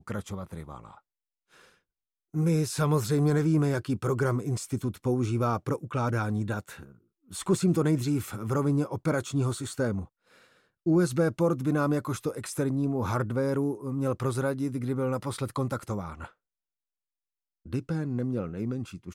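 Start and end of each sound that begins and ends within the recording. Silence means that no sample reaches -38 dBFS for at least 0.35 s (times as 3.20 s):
2.34–6.83 s
7.32–10.05 s
10.86–16.26 s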